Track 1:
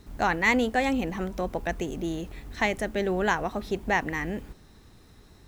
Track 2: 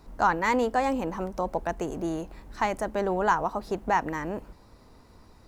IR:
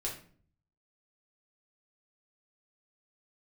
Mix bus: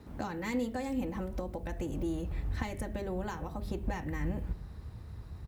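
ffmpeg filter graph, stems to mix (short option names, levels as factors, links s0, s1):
-filter_complex "[0:a]lowpass=f=1300:p=1,asubboost=boost=8.5:cutoff=100,volume=1.06,asplit=2[s0][s1];[s1]volume=0.211[s2];[1:a]equalizer=f=6000:w=3.3:g=-5.5,highshelf=f=9100:g=9.5,adelay=4.5,volume=0.398,asplit=2[s3][s4];[s4]apad=whole_len=241364[s5];[s0][s5]sidechaincompress=threshold=0.00891:ratio=8:attack=16:release=220[s6];[2:a]atrim=start_sample=2205[s7];[s2][s7]afir=irnorm=-1:irlink=0[s8];[s6][s3][s8]amix=inputs=3:normalize=0,highpass=68,acrossover=split=360|3000[s9][s10][s11];[s10]acompressor=threshold=0.00631:ratio=3[s12];[s9][s12][s11]amix=inputs=3:normalize=0"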